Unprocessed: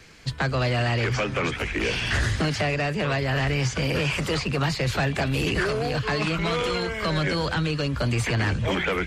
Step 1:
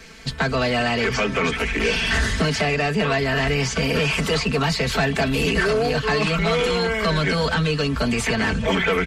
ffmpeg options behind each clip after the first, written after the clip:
ffmpeg -i in.wav -filter_complex "[0:a]aecho=1:1:4.5:0.75,asplit=2[link_01][link_02];[link_02]alimiter=limit=-21dB:level=0:latency=1,volume=-3dB[link_03];[link_01][link_03]amix=inputs=2:normalize=0" out.wav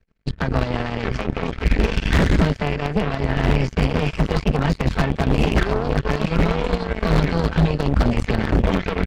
ffmpeg -i in.wav -af "aemphasis=mode=reproduction:type=riaa,aeval=exprs='1.26*(cos(1*acos(clip(val(0)/1.26,-1,1)))-cos(1*PI/2))+0.178*(cos(7*acos(clip(val(0)/1.26,-1,1)))-cos(7*PI/2))+0.02*(cos(8*acos(clip(val(0)/1.26,-1,1)))-cos(8*PI/2))':channel_layout=same,aeval=exprs='0.447*(abs(mod(val(0)/0.447+3,4)-2)-1)':channel_layout=same" out.wav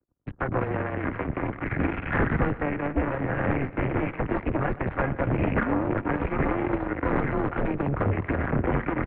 ffmpeg -i in.wav -filter_complex "[0:a]acrossover=split=390|1100[link_01][link_02][link_03];[link_03]acrusher=bits=5:mix=0:aa=0.000001[link_04];[link_01][link_02][link_04]amix=inputs=3:normalize=0,aecho=1:1:123|246|369|492|615:0.126|0.0755|0.0453|0.0272|0.0163,highpass=frequency=210:width_type=q:width=0.5412,highpass=frequency=210:width_type=q:width=1.307,lowpass=frequency=2300:width_type=q:width=0.5176,lowpass=frequency=2300:width_type=q:width=0.7071,lowpass=frequency=2300:width_type=q:width=1.932,afreqshift=-140,volume=-2dB" out.wav

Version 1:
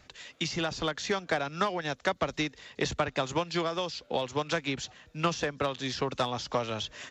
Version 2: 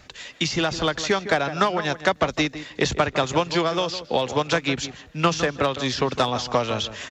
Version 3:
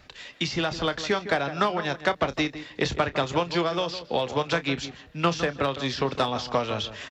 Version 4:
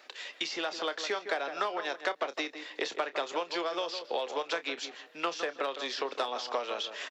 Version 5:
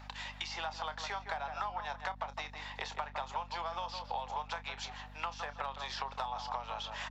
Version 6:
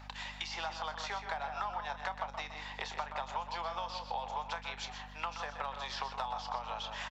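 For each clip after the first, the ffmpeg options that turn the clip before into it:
ffmpeg -i in.wav -filter_complex "[0:a]asplit=2[link_01][link_02];[link_02]adelay=158,lowpass=frequency=2000:poles=1,volume=-11.5dB,asplit=2[link_03][link_04];[link_04]adelay=158,lowpass=frequency=2000:poles=1,volume=0.15[link_05];[link_01][link_03][link_05]amix=inputs=3:normalize=0,volume=8dB" out.wav
ffmpeg -i in.wav -filter_complex "[0:a]equalizer=frequency=6700:width=2.8:gain=-7,asplit=2[link_01][link_02];[link_02]adelay=29,volume=-13.5dB[link_03];[link_01][link_03]amix=inputs=2:normalize=0,volume=-3.5dB" out.wav
ffmpeg -i in.wav -af "acompressor=threshold=-33dB:ratio=2,highpass=frequency=360:width=0.5412,highpass=frequency=360:width=1.3066" out.wav
ffmpeg -i in.wav -af "highpass=frequency=860:width_type=q:width=5.1,acompressor=threshold=-35dB:ratio=3,aeval=exprs='val(0)+0.00398*(sin(2*PI*50*n/s)+sin(2*PI*2*50*n/s)/2+sin(2*PI*3*50*n/s)/3+sin(2*PI*4*50*n/s)/4+sin(2*PI*5*50*n/s)/5)':channel_layout=same,volume=-2.5dB" out.wav
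ffmpeg -i in.wav -af "aecho=1:1:125:0.316" out.wav

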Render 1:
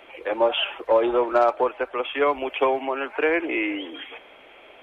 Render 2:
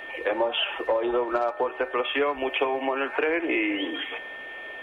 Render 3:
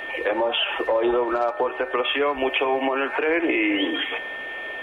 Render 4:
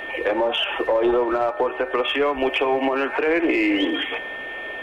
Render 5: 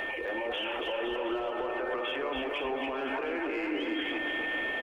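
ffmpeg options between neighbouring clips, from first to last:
ffmpeg -i in.wav -af "aeval=exprs='val(0)+0.00794*sin(2*PI*1800*n/s)':channel_layout=same,acompressor=threshold=-26dB:ratio=10,bandreject=frequency=75.65:width_type=h:width=4,bandreject=frequency=151.3:width_type=h:width=4,bandreject=frequency=226.95:width_type=h:width=4,bandreject=frequency=302.6:width_type=h:width=4,bandreject=frequency=378.25:width_type=h:width=4,bandreject=frequency=453.9:width_type=h:width=4,bandreject=frequency=529.55:width_type=h:width=4,bandreject=frequency=605.2:width_type=h:width=4,bandreject=frequency=680.85:width_type=h:width=4,bandreject=frequency=756.5:width_type=h:width=4,bandreject=frequency=832.15:width_type=h:width=4,bandreject=frequency=907.8:width_type=h:width=4,bandreject=frequency=983.45:width_type=h:width=4,bandreject=frequency=1059.1:width_type=h:width=4,bandreject=frequency=1134.75:width_type=h:width=4,bandreject=frequency=1210.4:width_type=h:width=4,bandreject=frequency=1286.05:width_type=h:width=4,bandreject=frequency=1361.7:width_type=h:width=4,bandreject=frequency=1437.35:width_type=h:width=4,bandreject=frequency=1513:width_type=h:width=4,bandreject=frequency=1588.65:width_type=h:width=4,bandreject=frequency=1664.3:width_type=h:width=4,bandreject=frequency=1739.95:width_type=h:width=4,bandreject=frequency=1815.6:width_type=h:width=4,bandreject=frequency=1891.25:width_type=h:width=4,bandreject=frequency=1966.9:width_type=h:width=4,bandreject=frequency=2042.55:width_type=h:width=4,bandreject=frequency=2118.2:width_type=h:width=4,bandreject=frequency=2193.85:width_type=h:width=4,bandreject=frequency=2269.5:width_type=h:width=4,bandreject=frequency=2345.15:width_type=h:width=4,bandreject=frequency=2420.8:width_type=h:width=4,bandreject=frequency=2496.45:width_type=h:width=4,bandreject=frequency=2572.1:width_type=h:width=4,bandreject=frequency=2647.75:width_type=h:width=4,bandreject=frequency=2723.4:width_type=h:width=4,bandreject=frequency=2799.05:width_type=h:width=4,volume=5dB" out.wav
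ffmpeg -i in.wav -af "alimiter=limit=-19dB:level=0:latency=1:release=88,volume=6dB" out.wav
ffmpeg -i in.wav -filter_complex "[0:a]lowshelf=frequency=450:gain=4.5,asplit=2[link_01][link_02];[link_02]aeval=exprs='clip(val(0),-1,0.133)':channel_layout=same,volume=-4.5dB[link_03];[link_01][link_03]amix=inputs=2:normalize=0,volume=-4dB" out.wav
ffmpeg -i in.wav -filter_complex "[0:a]alimiter=limit=-22.5dB:level=0:latency=1:release=40,acompressor=threshold=-31dB:ratio=6,asplit=2[link_01][link_02];[link_02]aecho=0:1:280|518|720.3|892.3|1038:0.631|0.398|0.251|0.158|0.1[link_03];[link_01][link_03]amix=inputs=2:normalize=0,volume=-1dB" out.wav

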